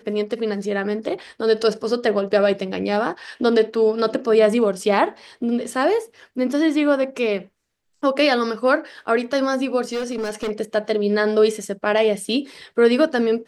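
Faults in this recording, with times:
0:09.84–0:10.51: clipping −21 dBFS

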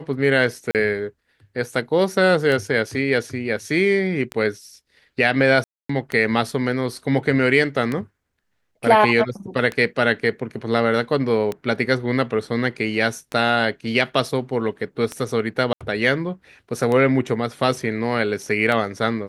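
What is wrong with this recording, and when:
scratch tick 33 1/3 rpm
0:00.71–0:00.75: drop-out 38 ms
0:05.64–0:05.89: drop-out 254 ms
0:15.73–0:15.81: drop-out 76 ms

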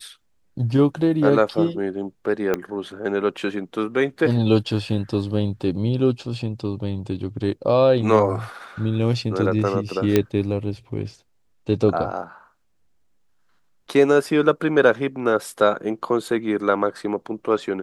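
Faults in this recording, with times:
0:02.54: click −9 dBFS
0:10.16: click −4 dBFS

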